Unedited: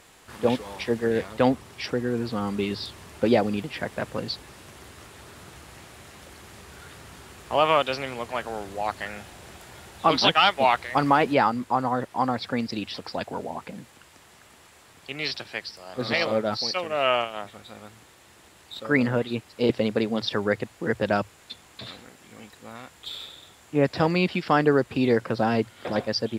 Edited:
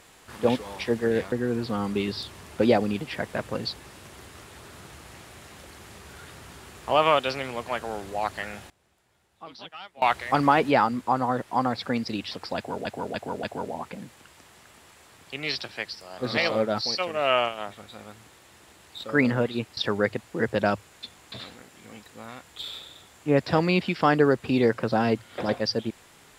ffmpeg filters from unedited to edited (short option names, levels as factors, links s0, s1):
-filter_complex "[0:a]asplit=8[s0][s1][s2][s3][s4][s5][s6][s7];[s0]atrim=end=1.322[s8];[s1]atrim=start=1.948:end=9.33,asetpts=PTS-STARTPTS,afade=t=out:st=7.222:d=0.16:c=log:silence=0.0707946[s9];[s2]atrim=start=9.33:end=10.65,asetpts=PTS-STARTPTS,volume=0.0708[s10];[s3]atrim=start=10.65:end=13.482,asetpts=PTS-STARTPTS,afade=t=in:d=0.16:c=log:silence=0.0707946[s11];[s4]atrim=start=13.188:end=13.482[s12];[s5]atrim=start=13.188:end=13.482[s13];[s6]atrim=start=13.188:end=19.532[s14];[s7]atrim=start=20.238[s15];[s9][s10][s11]concat=n=3:v=0:a=1[s16];[s8][s16]acrossfade=d=0.004:c1=hsin:c2=hsin[s17];[s17][s12]acrossfade=d=0.004:c1=hsin:c2=hsin[s18];[s18][s13]acrossfade=d=0.004:c1=hsin:c2=hsin[s19];[s19][s14]acrossfade=d=0.004:c1=hsin:c2=hsin[s20];[s20][s15]acrossfade=d=0.004:c1=hsin:c2=hsin"